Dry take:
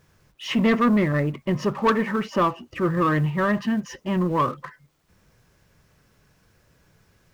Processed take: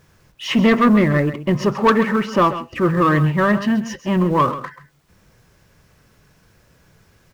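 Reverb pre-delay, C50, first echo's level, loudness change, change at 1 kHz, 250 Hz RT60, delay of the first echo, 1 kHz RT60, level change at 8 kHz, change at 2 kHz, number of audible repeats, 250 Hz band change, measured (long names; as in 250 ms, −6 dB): no reverb audible, no reverb audible, −13.0 dB, +5.5 dB, +5.5 dB, no reverb audible, 133 ms, no reverb audible, can't be measured, +5.5 dB, 1, +5.5 dB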